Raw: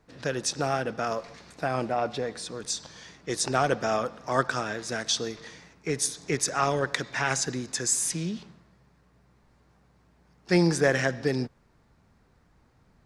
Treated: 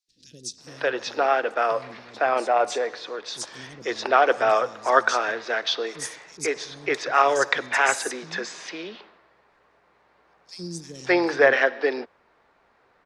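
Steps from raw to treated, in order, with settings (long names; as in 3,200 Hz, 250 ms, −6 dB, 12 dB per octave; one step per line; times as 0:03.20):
three-way crossover with the lows and the highs turned down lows −23 dB, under 350 Hz, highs −16 dB, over 4,500 Hz
three-band delay without the direct sound highs, lows, mids 80/580 ms, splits 220/5,200 Hz
level +8 dB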